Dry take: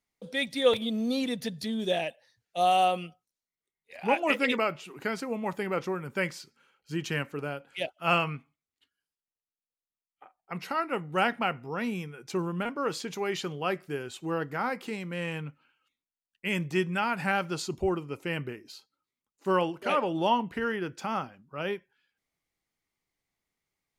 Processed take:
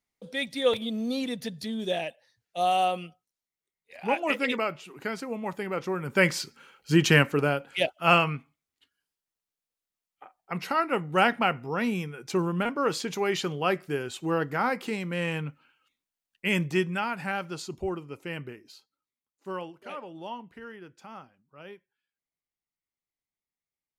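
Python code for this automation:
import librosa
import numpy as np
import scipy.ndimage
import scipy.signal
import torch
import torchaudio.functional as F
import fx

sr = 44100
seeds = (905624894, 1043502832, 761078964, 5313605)

y = fx.gain(x, sr, db=fx.line((5.79, -1.0), (6.4, 12.0), (7.14, 12.0), (8.23, 4.0), (16.6, 4.0), (17.22, -3.5), (18.67, -3.5), (20.02, -13.0)))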